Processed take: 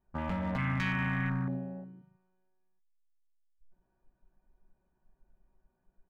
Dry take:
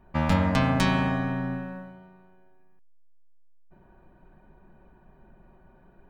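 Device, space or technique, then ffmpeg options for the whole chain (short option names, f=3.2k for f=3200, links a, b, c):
limiter into clipper: -filter_complex "[0:a]asplit=2[a][b];[b]adelay=16,volume=-7dB[c];[a][c]amix=inputs=2:normalize=0,afwtdn=0.0224,alimiter=limit=-16.5dB:level=0:latency=1:release=411,asoftclip=type=hard:threshold=-21dB,asettb=1/sr,asplit=3[d][e][f];[d]atrim=end=0.584[g];[e]atrim=start=0.58:end=1.48,asetpts=PTS-STARTPTS,afade=t=in:d=0.004:c=qsin,afade=t=out:st=0.896:d=0.004:c=qsin,equalizer=f=125:t=o:w=1:g=4,equalizer=f=500:t=o:w=1:g=-12,equalizer=f=2k:t=o:w=1:g=12,equalizer=f=4k:t=o:w=1:g=-4[h];[f]atrim=start=1.476[i];[g][h]acrossfade=d=0.004:c1=hsin:c2=qsin[j];[j][i]acrossfade=d=0.004:c1=qsin:c2=hsin,volume=-6dB"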